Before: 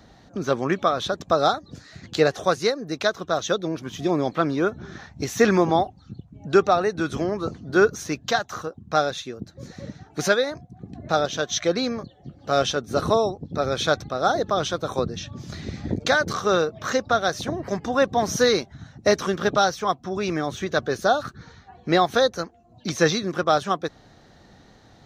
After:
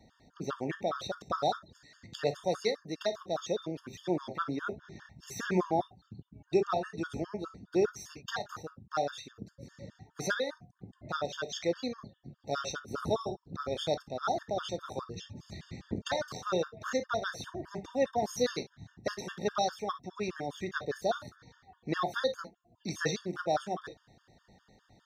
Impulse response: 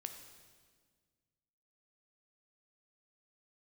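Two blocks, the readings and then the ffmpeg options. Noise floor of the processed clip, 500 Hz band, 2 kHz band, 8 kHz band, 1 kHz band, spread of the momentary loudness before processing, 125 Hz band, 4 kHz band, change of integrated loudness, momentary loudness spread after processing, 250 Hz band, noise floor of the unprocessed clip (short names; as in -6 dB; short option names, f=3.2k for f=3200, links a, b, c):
-71 dBFS, -11.0 dB, -12.5 dB, -11.5 dB, -11.5 dB, 15 LU, -11.0 dB, -12.0 dB, -11.5 dB, 16 LU, -11.0 dB, -53 dBFS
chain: -filter_complex "[1:a]atrim=start_sample=2205,atrim=end_sample=3087[a];[0:a][a]afir=irnorm=-1:irlink=0,afftfilt=real='re*gt(sin(2*PI*4.9*pts/sr)*(1-2*mod(floor(b*sr/1024/910),2)),0)':imag='im*gt(sin(2*PI*4.9*pts/sr)*(1-2*mod(floor(b*sr/1024/910),2)),0)':win_size=1024:overlap=0.75,volume=-4.5dB"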